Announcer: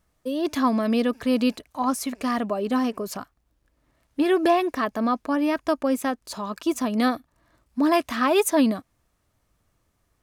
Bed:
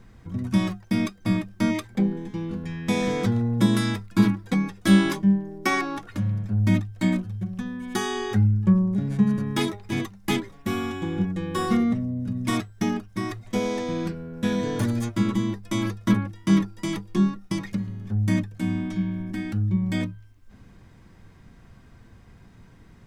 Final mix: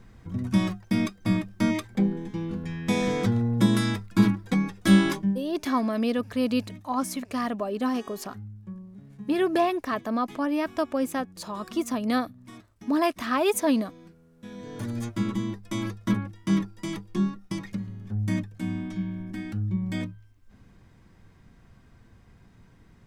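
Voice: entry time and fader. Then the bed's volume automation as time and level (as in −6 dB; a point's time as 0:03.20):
5.10 s, −3.5 dB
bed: 0:05.12 −1 dB
0:05.75 −21.5 dB
0:14.35 −21.5 dB
0:15.01 −4.5 dB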